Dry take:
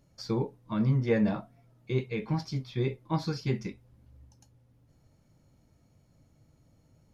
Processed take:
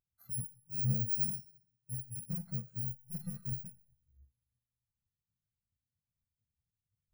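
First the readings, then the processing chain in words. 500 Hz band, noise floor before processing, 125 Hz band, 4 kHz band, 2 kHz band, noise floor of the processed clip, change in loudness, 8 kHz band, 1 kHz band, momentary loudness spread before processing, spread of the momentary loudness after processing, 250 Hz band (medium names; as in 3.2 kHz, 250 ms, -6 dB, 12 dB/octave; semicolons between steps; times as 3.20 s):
-28.0 dB, -65 dBFS, -8.0 dB, -18.0 dB, under -25 dB, under -85 dBFS, -5.0 dB, no reading, under -25 dB, 8 LU, 12 LU, -14.0 dB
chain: bit-reversed sample order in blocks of 128 samples; peaking EQ 1.8 kHz +6.5 dB 0.53 oct; in parallel at +2.5 dB: compression, threshold -38 dBFS, peak gain reduction 16 dB; on the sum: saturation -30 dBFS, distortion -7 dB; Schroeder reverb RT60 1.5 s, combs from 27 ms, DRR 6.5 dB; spectral contrast expander 2.5:1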